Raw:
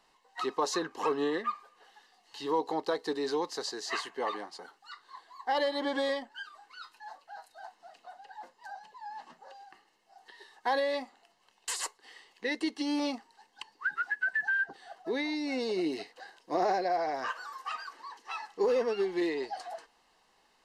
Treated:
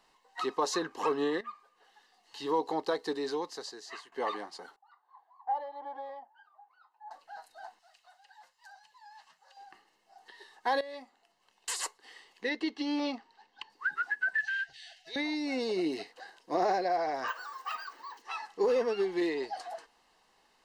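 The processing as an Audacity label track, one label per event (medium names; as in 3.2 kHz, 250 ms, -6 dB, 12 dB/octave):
1.410000	2.450000	fade in, from -12 dB
3.000000	4.120000	fade out, to -16.5 dB
4.760000	7.110000	band-pass filter 810 Hz, Q 5.8
7.790000	9.570000	amplifier tone stack bass-middle-treble 10-0-10
10.810000	11.760000	fade in, from -15.5 dB
12.490000	13.700000	Chebyshev low-pass 3.9 kHz
14.380000	15.160000	FFT filter 130 Hz 0 dB, 210 Hz -29 dB, 410 Hz -23 dB, 640 Hz -13 dB, 1.2 kHz -24 dB, 1.7 kHz +1 dB, 2.6 kHz +11 dB, 6.3 kHz +8 dB, 12 kHz -2 dB
17.280000	18.220000	careless resampling rate divided by 2×, down filtered, up hold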